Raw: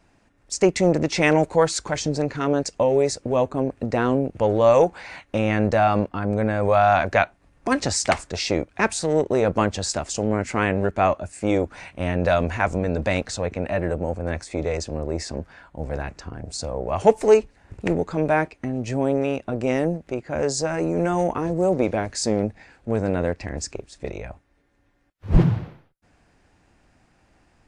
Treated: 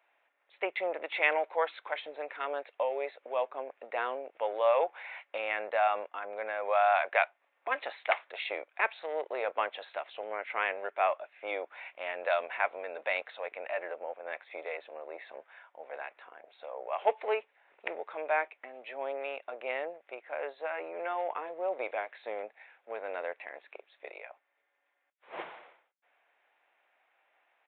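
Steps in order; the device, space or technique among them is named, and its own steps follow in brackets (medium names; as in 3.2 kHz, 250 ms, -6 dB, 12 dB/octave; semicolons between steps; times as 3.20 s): musical greeting card (resampled via 8 kHz; high-pass 570 Hz 24 dB/octave; peaking EQ 2.2 kHz +5 dB 0.38 oct); trim -7.5 dB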